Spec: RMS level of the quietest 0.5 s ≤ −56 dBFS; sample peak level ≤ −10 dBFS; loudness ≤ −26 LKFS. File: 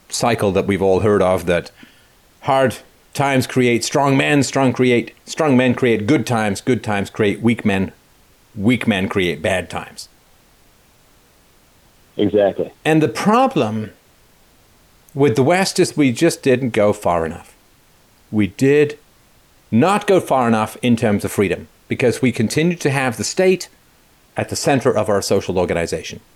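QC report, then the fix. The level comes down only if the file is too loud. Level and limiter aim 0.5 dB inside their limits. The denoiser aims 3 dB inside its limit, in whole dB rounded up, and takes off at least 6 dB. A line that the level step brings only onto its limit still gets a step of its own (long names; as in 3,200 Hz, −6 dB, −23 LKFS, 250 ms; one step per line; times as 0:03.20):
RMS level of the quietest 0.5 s −53 dBFS: out of spec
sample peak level −4.5 dBFS: out of spec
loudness −17.0 LKFS: out of spec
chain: level −9.5 dB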